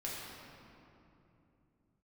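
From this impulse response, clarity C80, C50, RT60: 0.0 dB, -1.5 dB, 2.9 s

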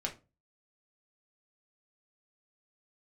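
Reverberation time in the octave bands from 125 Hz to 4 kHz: 0.45, 0.35, 0.35, 0.25, 0.20, 0.20 s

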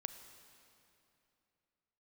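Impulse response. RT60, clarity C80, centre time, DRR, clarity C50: 2.8 s, 10.0 dB, 26 ms, 9.0 dB, 9.5 dB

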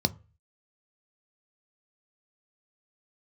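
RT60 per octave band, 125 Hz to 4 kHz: 0.50, 0.30, 0.35, 0.35, 0.35, 0.20 s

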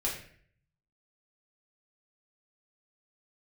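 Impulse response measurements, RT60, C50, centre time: 0.55 s, 5.5 dB, 33 ms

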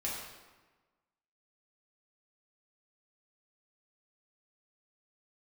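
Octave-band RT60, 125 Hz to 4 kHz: 1.3, 1.4, 1.3, 1.3, 1.1, 0.90 s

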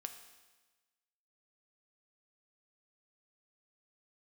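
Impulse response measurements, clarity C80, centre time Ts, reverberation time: 10.5 dB, 19 ms, 1.2 s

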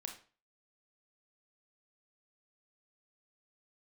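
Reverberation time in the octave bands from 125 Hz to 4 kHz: 0.40, 0.40, 0.35, 0.35, 0.35, 0.35 s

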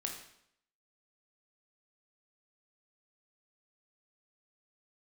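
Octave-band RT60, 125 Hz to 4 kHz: 0.70, 0.75, 0.70, 0.70, 0.70, 0.65 s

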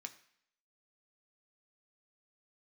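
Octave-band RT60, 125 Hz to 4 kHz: 0.60, 0.65, 0.60, 0.70, 0.75, 0.70 s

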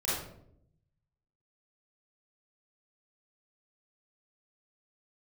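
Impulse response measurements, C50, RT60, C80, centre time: -2.0 dB, 0.70 s, 4.0 dB, 68 ms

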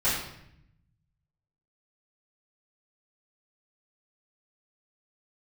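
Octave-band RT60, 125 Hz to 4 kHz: 1.7, 1.2, 0.80, 0.70, 0.75, 0.65 s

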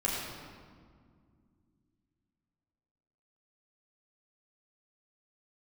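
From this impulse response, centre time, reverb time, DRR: 0.101 s, 2.0 s, -5.5 dB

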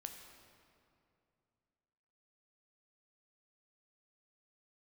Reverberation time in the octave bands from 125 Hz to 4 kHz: 3.1, 2.9, 2.7, 2.4, 2.1, 1.6 s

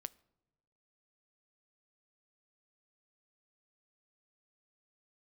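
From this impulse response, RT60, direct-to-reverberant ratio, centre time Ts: not exponential, 16.0 dB, 2 ms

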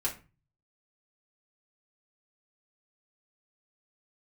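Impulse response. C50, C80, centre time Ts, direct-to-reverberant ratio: 11.5 dB, 18.0 dB, 15 ms, -5.0 dB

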